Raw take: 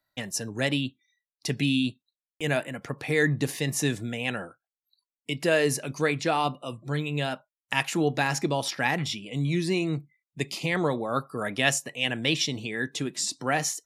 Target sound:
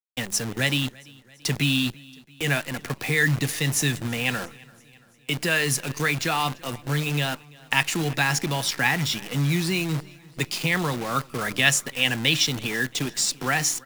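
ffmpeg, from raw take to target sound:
-filter_complex "[0:a]bandreject=f=610:w=12,bandreject=f=102.1:t=h:w=4,bandreject=f=204.2:t=h:w=4,bandreject=f=306.3:t=h:w=4,acrossover=split=200|1000[a][b][c];[b]acompressor=threshold=-37dB:ratio=6[d];[a][d][c]amix=inputs=3:normalize=0,acrusher=bits=7:dc=4:mix=0:aa=0.000001,aecho=1:1:338|676|1014|1352:0.0631|0.036|0.0205|0.0117,volume=5.5dB"

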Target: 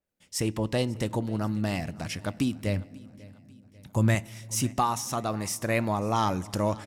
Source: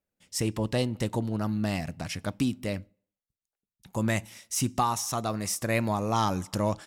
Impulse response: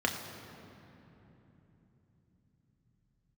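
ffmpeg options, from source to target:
-filter_complex "[0:a]asettb=1/sr,asplit=3[a][b][c];[a]atrim=end=2.664[d];[b]atrim=start=2.66:end=4.15,asetpts=PTS-STARTPTS,afade=t=in:d=0.004:c=qsin,afade=t=out:st=1.486:d=0.004:c=qsin,equalizer=f=100:t=o:w=1.5:g=8.5[e];[c]atrim=start=4.146[f];[d][e]acrossfade=d=0.004:c1=hsin:c2=qsin[g];[g][f]acrossfade=d=0.004:c1=qsin:c2=hsin,aecho=1:1:543|1086|1629:0.0794|0.0373|0.0175,asplit=2[h][i];[1:a]atrim=start_sample=2205,asetrate=52920,aresample=44100[j];[i][j]afir=irnorm=-1:irlink=0,volume=-25.5dB[k];[h][k]amix=inputs=2:normalize=0,adynamicequalizer=threshold=0.00794:dfrequency=3800:dqfactor=0.7:tfrequency=3800:tqfactor=0.7:attack=5:release=100:ratio=0.375:range=2:mode=cutabove:tftype=highshelf"

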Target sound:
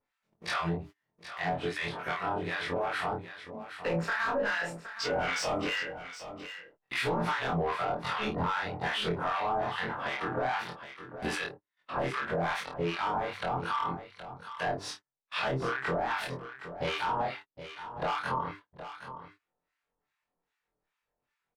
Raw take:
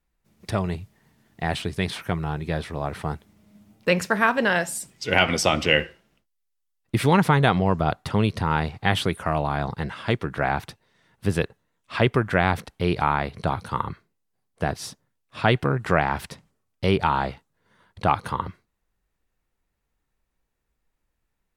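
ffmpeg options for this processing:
-filter_complex "[0:a]afftfilt=real='re':imag='-im':win_size=2048:overlap=0.75,asplit=2[a][b];[b]highpass=f=720:p=1,volume=27dB,asoftclip=type=tanh:threshold=-6dB[c];[a][c]amix=inputs=2:normalize=0,lowpass=f=4.4k:p=1,volume=-6dB,acrossover=split=980[d][e];[d]aeval=exprs='val(0)*(1-1/2+1/2*cos(2*PI*2.5*n/s))':c=same[f];[e]aeval=exprs='val(0)*(1-1/2-1/2*cos(2*PI*2.5*n/s))':c=same[g];[f][g]amix=inputs=2:normalize=0,acompressor=mode=upward:threshold=-34dB:ratio=2.5,highshelf=f=6.6k:g=-11.5,bandreject=f=50:t=h:w=6,bandreject=f=100:t=h:w=6,bandreject=f=150:t=h:w=6,bandreject=f=200:t=h:w=6,bandreject=f=250:t=h:w=6,bandreject=f=300:t=h:w=6,bandreject=f=350:t=h:w=6,bandreject=f=400:t=h:w=6,bandreject=f=450:t=h:w=6,asplit=2[h][i];[i]adelay=30,volume=-5dB[j];[h][j]amix=inputs=2:normalize=0,acompressor=threshold=-22dB:ratio=3,alimiter=limit=-18dB:level=0:latency=1:release=92,agate=range=-29dB:threshold=-41dB:ratio=16:detection=peak,aecho=1:1:768:0.251,adynamicequalizer=threshold=0.00891:dfrequency=2200:dqfactor=0.7:tfrequency=2200:tqfactor=0.7:attack=5:release=100:ratio=0.375:range=1.5:mode=cutabove:tftype=highshelf,volume=-4dB"

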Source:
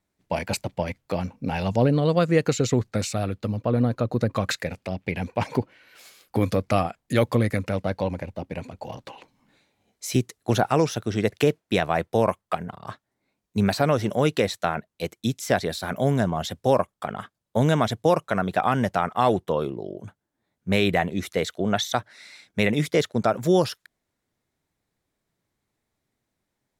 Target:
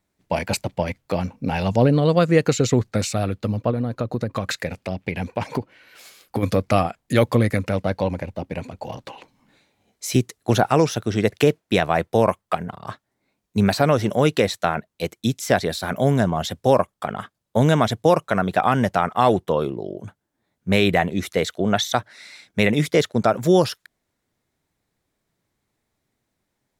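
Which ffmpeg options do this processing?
-filter_complex "[0:a]asplit=3[a][b][c];[a]afade=t=out:st=3.7:d=0.02[d];[b]acompressor=threshold=-24dB:ratio=5,afade=t=in:st=3.7:d=0.02,afade=t=out:st=6.42:d=0.02[e];[c]afade=t=in:st=6.42:d=0.02[f];[d][e][f]amix=inputs=3:normalize=0,volume=3.5dB"

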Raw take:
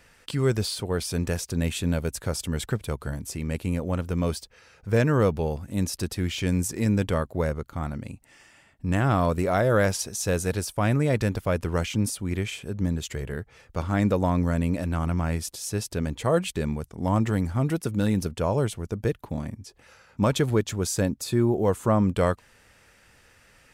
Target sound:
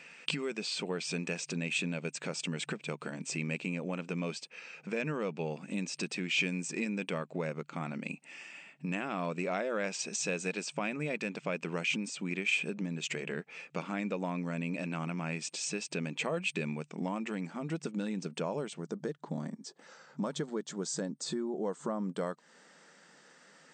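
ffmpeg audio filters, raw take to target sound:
-af "acompressor=threshold=-31dB:ratio=6,asetnsamples=n=441:p=0,asendcmd='17.47 equalizer g 5.5;18.8 equalizer g -9.5',equalizer=f=2.5k:t=o:w=0.39:g=14.5,afftfilt=real='re*between(b*sr/4096,140,8600)':imag='im*between(b*sr/4096,140,8600)':win_size=4096:overlap=0.75"

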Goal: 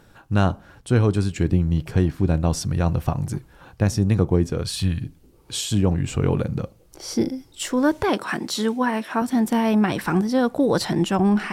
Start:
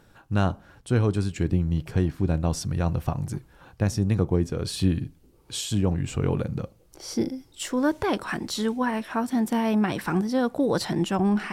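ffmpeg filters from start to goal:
-filter_complex "[0:a]asettb=1/sr,asplit=3[a][b][c];[a]atrim=end=4.624[d];[b]atrim=start=4.62:end=5.04,asetpts=PTS-STARTPTS,afade=t=in:d=0.004:c=qsin,afade=t=out:st=0.416:d=0.004:c=qsin,equalizer=f=330:t=o:w=1.3:g=-13.5[e];[c]atrim=start=5.036[f];[d][e]acrossfade=d=0.004:c1=hsin:c2=qsin[g];[g][f]acrossfade=d=0.004:c1=qsin:c2=hsin,asettb=1/sr,asplit=3[h][i][j];[h]atrim=end=8.094[k];[i]atrim=start=8.09:end=9.22,asetpts=PTS-STARTPTS,afade=t=in:d=0.004:c=qsin,afade=t=out:st=1.126:d=0.004:c=qsin,highpass=160[l];[j]atrim=start=9.216[m];[k][l]acrossfade=d=0.004:c1=hsin:c2=qsin[n];[n][m]acrossfade=d=0.004:c1=qsin:c2=hsin,volume=4dB"

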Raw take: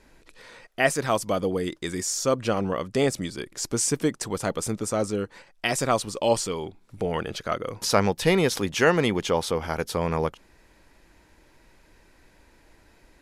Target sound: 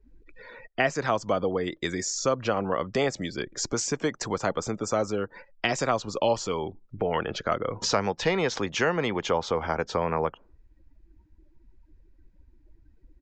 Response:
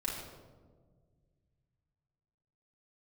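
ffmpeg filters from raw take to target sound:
-filter_complex "[0:a]afftdn=nr=28:nf=-47,highshelf=f=2.9k:g=-3.5,acrossover=split=180|550[a][b][c];[a]acompressor=threshold=-44dB:ratio=4[d];[b]acompressor=threshold=-37dB:ratio=4[e];[c]acompressor=threshold=-28dB:ratio=4[f];[d][e][f]amix=inputs=3:normalize=0,aresample=16000,aresample=44100,adynamicequalizer=threshold=0.00708:dfrequency=2000:dqfactor=0.7:tfrequency=2000:tqfactor=0.7:attack=5:release=100:ratio=0.375:range=3:mode=cutabove:tftype=highshelf,volume=5dB"

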